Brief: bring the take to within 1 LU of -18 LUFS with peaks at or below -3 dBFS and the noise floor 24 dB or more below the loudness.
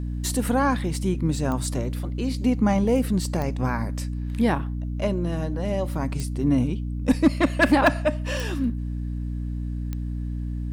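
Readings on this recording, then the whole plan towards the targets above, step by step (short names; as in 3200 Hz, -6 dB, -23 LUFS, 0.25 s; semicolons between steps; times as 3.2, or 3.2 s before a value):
clicks 6; hum 60 Hz; harmonics up to 300 Hz; hum level -26 dBFS; loudness -25.0 LUFS; peak -7.0 dBFS; loudness target -18.0 LUFS
-> de-click; de-hum 60 Hz, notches 5; gain +7 dB; limiter -3 dBFS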